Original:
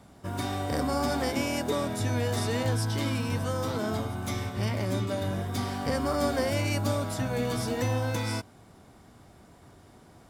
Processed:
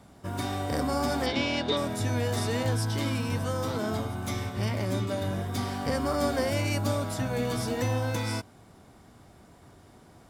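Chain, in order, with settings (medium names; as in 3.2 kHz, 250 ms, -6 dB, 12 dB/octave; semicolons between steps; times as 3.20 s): 1.26–1.77 s: resonant low-pass 3.8 kHz, resonance Q 3.4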